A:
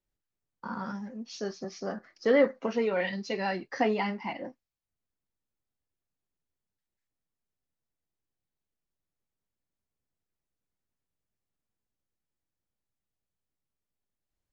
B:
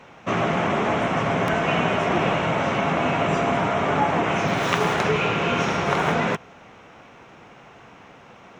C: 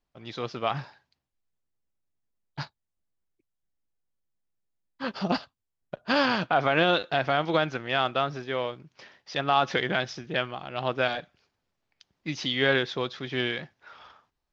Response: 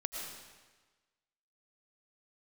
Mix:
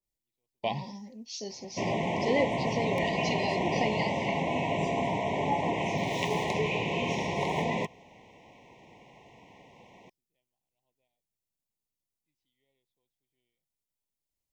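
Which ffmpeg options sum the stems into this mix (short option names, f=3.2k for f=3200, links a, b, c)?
-filter_complex "[0:a]highshelf=f=4.3k:g=10.5,adynamicequalizer=threshold=0.00501:dfrequency=1900:dqfactor=0.7:tfrequency=1900:tqfactor=0.7:attack=5:release=100:ratio=0.375:range=2.5:mode=boostabove:tftype=highshelf,volume=-5.5dB,asplit=2[a][b];[1:a]adelay=1500,volume=-7dB[c];[2:a]volume=-2dB[d];[b]apad=whole_len=640379[e];[d][e]sidechaingate=range=-53dB:threshold=-56dB:ratio=16:detection=peak[f];[a][c][f]amix=inputs=3:normalize=0,asuperstop=centerf=1400:order=20:qfactor=1.8"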